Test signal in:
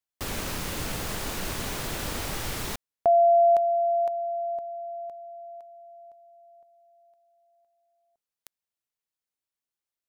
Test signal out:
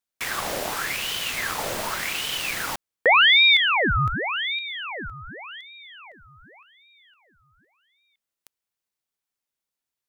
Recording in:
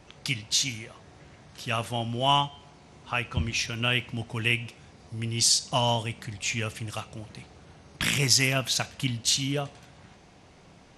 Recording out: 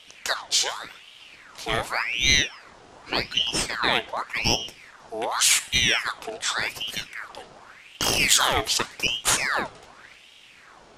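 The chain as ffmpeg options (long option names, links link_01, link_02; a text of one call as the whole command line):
ffmpeg -i in.wav -af "acontrast=57,aeval=exprs='val(0)*sin(2*PI*1800*n/s+1800*0.7/0.87*sin(2*PI*0.87*n/s))':channel_layout=same" out.wav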